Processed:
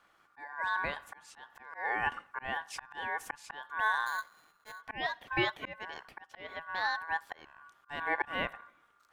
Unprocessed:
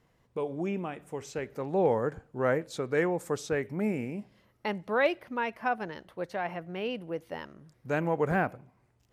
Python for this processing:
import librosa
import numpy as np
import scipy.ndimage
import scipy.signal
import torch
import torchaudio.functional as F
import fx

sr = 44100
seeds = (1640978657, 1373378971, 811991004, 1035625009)

y = fx.sample_sort(x, sr, block=16, at=(4.06, 4.82))
y = fx.auto_swell(y, sr, attack_ms=435.0)
y = y * np.sin(2.0 * np.pi * 1300.0 * np.arange(len(y)) / sr)
y = y * librosa.db_to_amplitude(4.0)